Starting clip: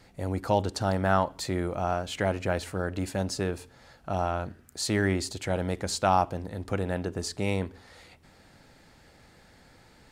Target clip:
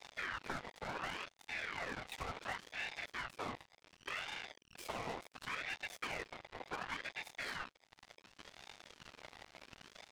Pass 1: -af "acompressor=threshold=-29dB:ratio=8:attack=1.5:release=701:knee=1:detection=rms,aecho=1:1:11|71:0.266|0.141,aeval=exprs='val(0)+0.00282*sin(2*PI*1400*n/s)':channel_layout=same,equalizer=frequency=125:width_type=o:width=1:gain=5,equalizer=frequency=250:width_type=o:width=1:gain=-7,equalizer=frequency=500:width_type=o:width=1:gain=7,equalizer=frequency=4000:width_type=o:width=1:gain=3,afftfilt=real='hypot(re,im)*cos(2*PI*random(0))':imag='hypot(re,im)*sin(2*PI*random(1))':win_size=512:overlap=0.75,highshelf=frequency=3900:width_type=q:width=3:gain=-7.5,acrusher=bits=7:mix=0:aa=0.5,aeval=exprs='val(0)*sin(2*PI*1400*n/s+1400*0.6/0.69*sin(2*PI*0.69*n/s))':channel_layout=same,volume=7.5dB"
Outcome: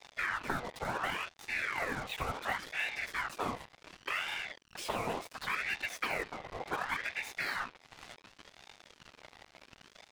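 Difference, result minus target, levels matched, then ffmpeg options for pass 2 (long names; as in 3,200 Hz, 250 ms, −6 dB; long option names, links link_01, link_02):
downward compressor: peak gain reduction −8 dB
-af "acompressor=threshold=-38dB:ratio=8:attack=1.5:release=701:knee=1:detection=rms,aecho=1:1:11|71:0.266|0.141,aeval=exprs='val(0)+0.00282*sin(2*PI*1400*n/s)':channel_layout=same,equalizer=frequency=125:width_type=o:width=1:gain=5,equalizer=frequency=250:width_type=o:width=1:gain=-7,equalizer=frequency=500:width_type=o:width=1:gain=7,equalizer=frequency=4000:width_type=o:width=1:gain=3,afftfilt=real='hypot(re,im)*cos(2*PI*random(0))':imag='hypot(re,im)*sin(2*PI*random(1))':win_size=512:overlap=0.75,highshelf=frequency=3900:width_type=q:width=3:gain=-7.5,acrusher=bits=7:mix=0:aa=0.5,aeval=exprs='val(0)*sin(2*PI*1400*n/s+1400*0.6/0.69*sin(2*PI*0.69*n/s))':channel_layout=same,volume=7.5dB"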